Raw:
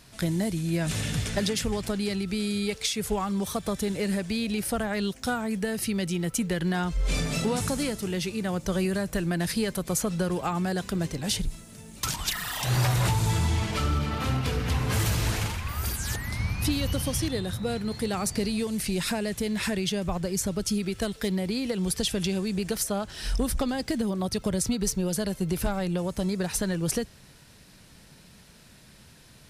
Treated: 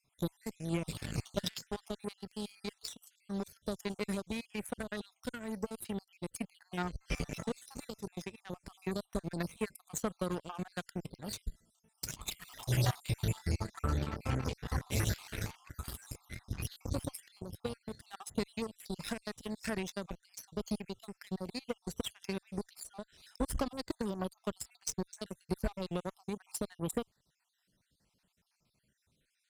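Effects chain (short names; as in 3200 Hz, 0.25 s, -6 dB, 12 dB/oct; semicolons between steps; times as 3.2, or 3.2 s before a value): random spectral dropouts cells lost 54%; added harmonics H 3 -15 dB, 7 -26 dB, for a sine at -16 dBFS; gain -3 dB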